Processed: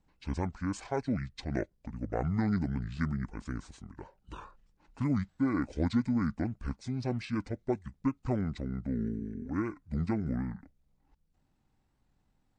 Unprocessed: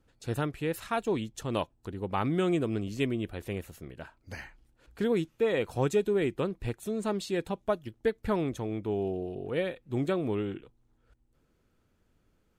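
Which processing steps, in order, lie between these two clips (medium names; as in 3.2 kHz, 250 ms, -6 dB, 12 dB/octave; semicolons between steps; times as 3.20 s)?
pitch shift -9 st; warped record 78 rpm, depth 100 cents; trim -2 dB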